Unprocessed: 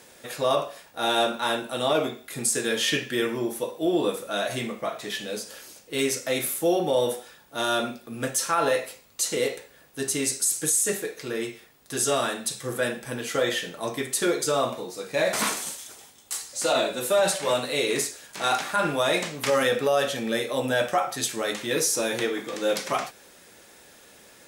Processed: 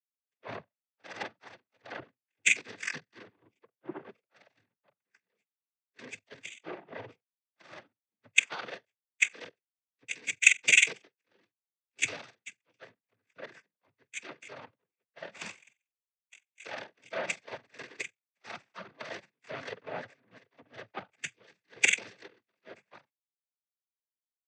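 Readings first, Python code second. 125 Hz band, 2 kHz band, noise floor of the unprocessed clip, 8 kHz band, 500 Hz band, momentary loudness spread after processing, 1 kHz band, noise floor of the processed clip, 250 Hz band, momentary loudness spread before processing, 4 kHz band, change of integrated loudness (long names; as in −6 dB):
below −15 dB, −0.5 dB, −53 dBFS, −9.5 dB, −22.0 dB, 23 LU, −19.0 dB, below −85 dBFS, −22.5 dB, 10 LU, −9.5 dB, −3.5 dB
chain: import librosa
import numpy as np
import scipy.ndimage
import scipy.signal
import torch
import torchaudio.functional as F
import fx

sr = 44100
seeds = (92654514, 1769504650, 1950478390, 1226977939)

y = fx.freq_compress(x, sr, knee_hz=1600.0, ratio=4.0)
y = fx.power_curve(y, sr, exponent=3.0)
y = fx.noise_vocoder(y, sr, seeds[0], bands=16)
y = fx.band_widen(y, sr, depth_pct=70)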